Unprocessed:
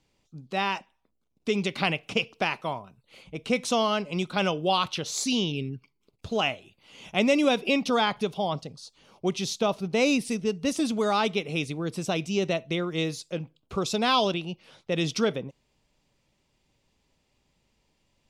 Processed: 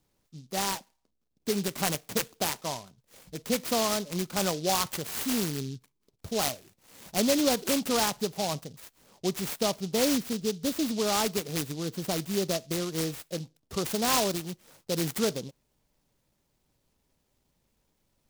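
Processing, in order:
short delay modulated by noise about 4,500 Hz, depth 0.12 ms
level −2.5 dB

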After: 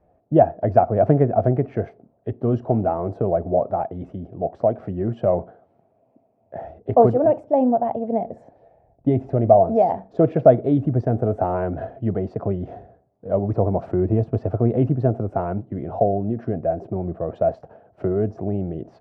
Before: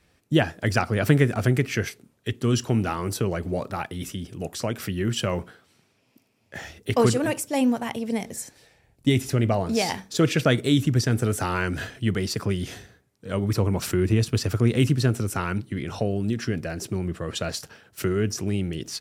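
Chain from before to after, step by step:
low-pass with resonance 680 Hz, resonance Q 6.5

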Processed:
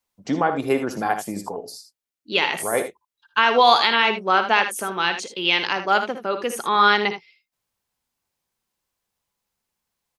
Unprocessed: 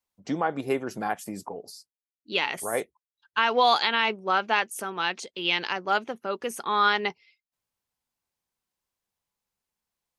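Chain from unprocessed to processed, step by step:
ambience of single reflections 59 ms −12.5 dB, 78 ms −10.5 dB
level +5.5 dB

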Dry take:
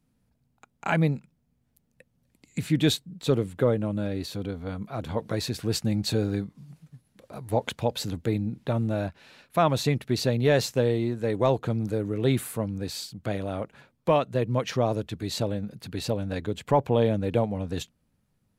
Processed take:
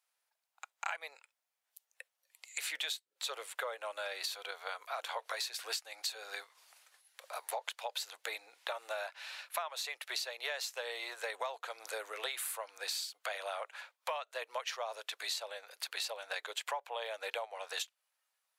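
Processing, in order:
Bessel high-pass filter 1,100 Hz, order 8
downward compressor 16 to 1, threshold −43 dBFS, peak gain reduction 20.5 dB
noise reduction from a noise print of the clip's start 8 dB
level +8 dB

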